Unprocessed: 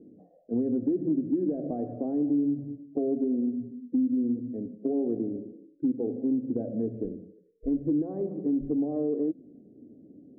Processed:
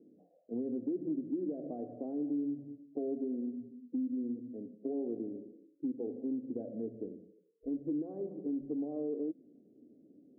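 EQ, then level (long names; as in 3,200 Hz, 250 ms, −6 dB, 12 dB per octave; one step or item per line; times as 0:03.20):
resonant band-pass 470 Hz, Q 0.58
−7.5 dB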